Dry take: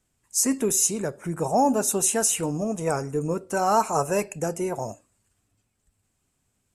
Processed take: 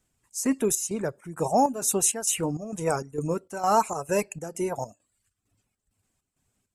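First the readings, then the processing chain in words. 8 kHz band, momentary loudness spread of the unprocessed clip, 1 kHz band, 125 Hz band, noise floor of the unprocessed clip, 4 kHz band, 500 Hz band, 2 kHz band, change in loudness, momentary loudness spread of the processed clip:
−3.5 dB, 9 LU, −1.5 dB, −3.0 dB, −74 dBFS, −3.0 dB, −2.0 dB, −3.0 dB, −2.5 dB, 10 LU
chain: reverb reduction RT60 0.54 s
square-wave tremolo 2.2 Hz, depth 65%, duty 65%

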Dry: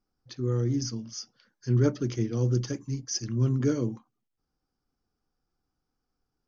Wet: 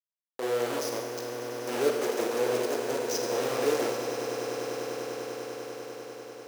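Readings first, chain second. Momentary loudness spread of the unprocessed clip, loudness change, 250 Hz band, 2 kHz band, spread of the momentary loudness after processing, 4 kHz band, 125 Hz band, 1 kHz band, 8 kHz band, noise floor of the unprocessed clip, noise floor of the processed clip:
15 LU, −2.5 dB, −6.0 dB, +12.0 dB, 11 LU, +3.5 dB, −20.5 dB, +15.0 dB, can't be measured, −83 dBFS, below −85 dBFS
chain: dynamic equaliser 640 Hz, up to −7 dB, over −43 dBFS, Q 1.2
bit reduction 5 bits
high-pass with resonance 480 Hz, resonance Q 4.9
echo that builds up and dies away 99 ms, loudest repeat 8, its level −14.5 dB
four-comb reverb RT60 1.5 s, combs from 33 ms, DRR 3 dB
level −4 dB

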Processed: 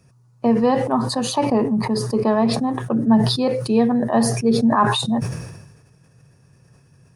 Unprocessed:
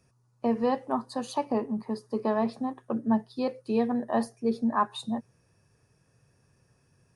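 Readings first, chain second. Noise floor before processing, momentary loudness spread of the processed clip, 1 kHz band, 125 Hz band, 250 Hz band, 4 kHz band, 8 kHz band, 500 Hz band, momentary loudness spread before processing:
−68 dBFS, 6 LU, +9.0 dB, +19.0 dB, +10.5 dB, +17.5 dB, can't be measured, +9.5 dB, 6 LU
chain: parametric band 140 Hz +7 dB 0.9 octaves
level that may fall only so fast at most 51 dB per second
level +7.5 dB

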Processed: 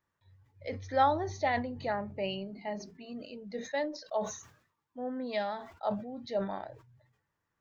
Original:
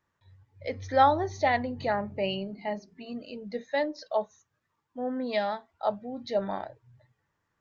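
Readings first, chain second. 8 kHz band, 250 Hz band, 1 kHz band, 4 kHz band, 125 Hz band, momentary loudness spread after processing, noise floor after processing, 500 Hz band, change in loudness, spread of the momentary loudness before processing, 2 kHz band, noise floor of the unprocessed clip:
can't be measured, −3.5 dB, −5.0 dB, −4.5 dB, −3.0 dB, 16 LU, −84 dBFS, −4.5 dB, −5.0 dB, 16 LU, −4.5 dB, −79 dBFS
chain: level that may fall only so fast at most 97 dB per second
level −5 dB

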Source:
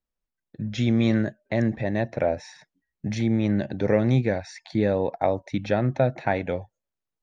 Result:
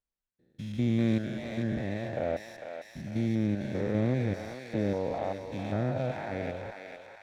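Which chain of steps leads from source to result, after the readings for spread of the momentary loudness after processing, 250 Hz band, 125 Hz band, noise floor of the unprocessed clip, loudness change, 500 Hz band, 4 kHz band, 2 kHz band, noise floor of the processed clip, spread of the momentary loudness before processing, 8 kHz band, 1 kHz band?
14 LU, −6.0 dB, −6.0 dB, below −85 dBFS, −6.5 dB, −8.0 dB, −7.5 dB, −7.5 dB, below −85 dBFS, 10 LU, can't be measured, −8.0 dB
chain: spectrum averaged block by block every 200 ms
feedback echo with a high-pass in the loop 450 ms, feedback 66%, high-pass 1,100 Hz, level −3 dB
windowed peak hold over 3 samples
level −5 dB

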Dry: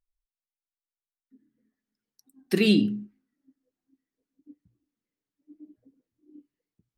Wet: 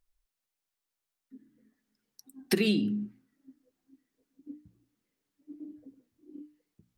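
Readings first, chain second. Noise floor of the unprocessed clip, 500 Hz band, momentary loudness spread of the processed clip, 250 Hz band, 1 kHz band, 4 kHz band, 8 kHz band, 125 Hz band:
below −85 dBFS, −4.0 dB, 21 LU, −5.0 dB, can't be measured, −4.5 dB, +2.5 dB, −5.5 dB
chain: downward compressor 12 to 1, threshold −30 dBFS, peak gain reduction 15 dB
mains-hum notches 60/120/180/240/300 Hz
level +7.5 dB

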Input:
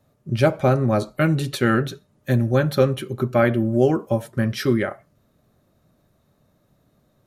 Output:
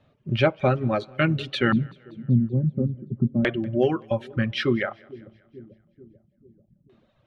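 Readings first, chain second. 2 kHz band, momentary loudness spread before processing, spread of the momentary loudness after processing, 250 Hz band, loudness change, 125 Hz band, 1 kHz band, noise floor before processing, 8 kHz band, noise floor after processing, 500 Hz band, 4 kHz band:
−1.5 dB, 7 LU, 7 LU, −2.5 dB, −3.5 dB, −3.0 dB, −4.0 dB, −64 dBFS, below −15 dB, −66 dBFS, −5.0 dB, +0.5 dB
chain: auto-filter low-pass square 0.29 Hz 210–3,000 Hz
in parallel at −2 dB: downward compressor, threshold −28 dBFS, peak gain reduction 16 dB
on the sum: echo with a time of its own for lows and highs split 460 Hz, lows 441 ms, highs 191 ms, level −14.5 dB
reverb reduction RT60 1.5 s
level −4 dB

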